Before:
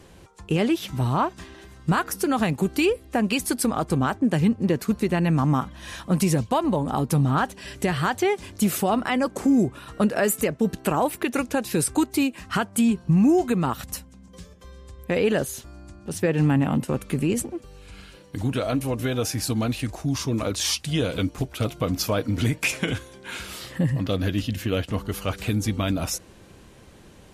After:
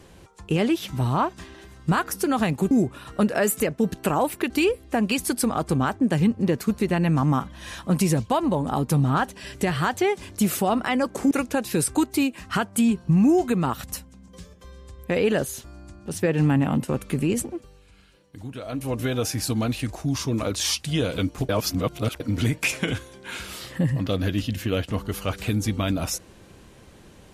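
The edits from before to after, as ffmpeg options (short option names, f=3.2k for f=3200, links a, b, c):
-filter_complex "[0:a]asplit=8[a][b][c][d][e][f][g][h];[a]atrim=end=2.712[i];[b]atrim=start=9.518:end=11.312[j];[c]atrim=start=2.708:end=9.522[k];[d]atrim=start=11.308:end=17.98,asetpts=PTS-STARTPTS,afade=t=out:st=6.242:d=0.43:c=qua:silence=0.281838[l];[e]atrim=start=17.98:end=18.51,asetpts=PTS-STARTPTS,volume=-11dB[m];[f]atrim=start=18.51:end=21.492,asetpts=PTS-STARTPTS,afade=t=in:d=0.43:c=qua:silence=0.281838[n];[g]atrim=start=21.488:end=22.202,asetpts=PTS-STARTPTS,areverse[o];[h]atrim=start=22.198[p];[i][j]acrossfade=d=0.004:c1=hsin:c2=hsin[q];[q][k]acrossfade=d=0.004:c1=hsin:c2=hsin[r];[l][m][n]concat=n=3:v=0:a=1[s];[r][s]acrossfade=d=0.004:c1=hsin:c2=hsin[t];[t][o]acrossfade=d=0.004:c1=hsin:c2=hsin[u];[u][p]acrossfade=d=0.004:c1=hsin:c2=hsin"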